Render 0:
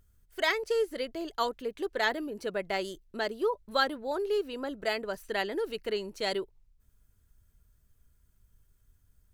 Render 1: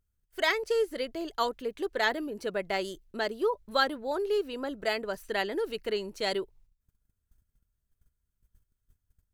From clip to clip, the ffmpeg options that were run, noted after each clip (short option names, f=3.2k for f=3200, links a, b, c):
-af "agate=range=-15dB:threshold=-59dB:ratio=16:detection=peak,volume=1dB"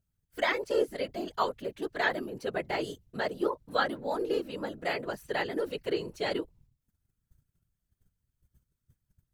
-filter_complex "[0:a]afftfilt=real='hypot(re,im)*cos(2*PI*random(0))':imag='hypot(re,im)*sin(2*PI*random(1))':win_size=512:overlap=0.75,acrossover=split=3500[a][b];[b]acompressor=threshold=-51dB:ratio=4:attack=1:release=60[c];[a][c]amix=inputs=2:normalize=0,volume=5dB"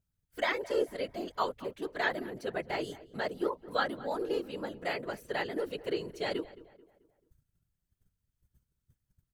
-filter_complex "[0:a]asplit=2[a][b];[b]adelay=218,lowpass=f=2.3k:p=1,volume=-18dB,asplit=2[c][d];[d]adelay=218,lowpass=f=2.3k:p=1,volume=0.44,asplit=2[e][f];[f]adelay=218,lowpass=f=2.3k:p=1,volume=0.44,asplit=2[g][h];[h]adelay=218,lowpass=f=2.3k:p=1,volume=0.44[i];[a][c][e][g][i]amix=inputs=5:normalize=0,volume=-2.5dB"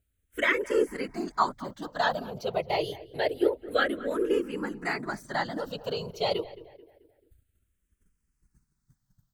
-filter_complex "[0:a]asplit=2[a][b];[b]afreqshift=-0.27[c];[a][c]amix=inputs=2:normalize=1,volume=8.5dB"